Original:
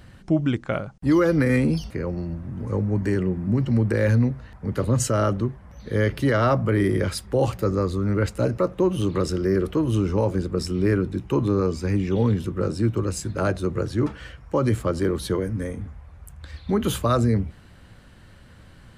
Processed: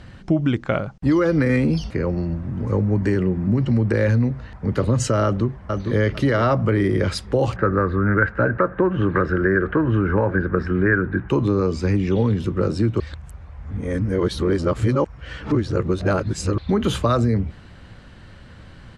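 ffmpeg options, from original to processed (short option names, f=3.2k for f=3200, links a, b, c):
-filter_complex "[0:a]asplit=2[a][b];[b]afade=t=in:st=5.24:d=0.01,afade=t=out:st=5.97:d=0.01,aecho=0:1:450|900|1350:0.446684|0.111671|0.0279177[c];[a][c]amix=inputs=2:normalize=0,asettb=1/sr,asplit=3[d][e][f];[d]atrim=end=7.564[g];[e]atrim=start=7.56:end=11.29,asetpts=PTS-STARTPTS,afade=t=in:d=0.004:c=qsin,afade=t=out:st=3.726:d=0.004:c=qsin,lowpass=f=1.6k:t=q:w=9.1[h];[f]atrim=start=11.286[i];[g][h]acrossfade=d=0.004:c1=hsin:c2=qsin[j];[j][i]acrossfade=d=0.004:c1=qsin:c2=hsin,asplit=3[k][l][m];[k]atrim=end=13.002[n];[l]atrim=start=12.998:end=16.582,asetpts=PTS-STARTPTS,areverse[o];[m]atrim=start=16.578[p];[n][o]acrossfade=d=0.004:c1=hsin:c2=hsin[q];[q][p]acrossfade=d=0.004:c1=hsin:c2=hsin,lowpass=6.1k,acompressor=threshold=-21dB:ratio=3,volume=5.5dB"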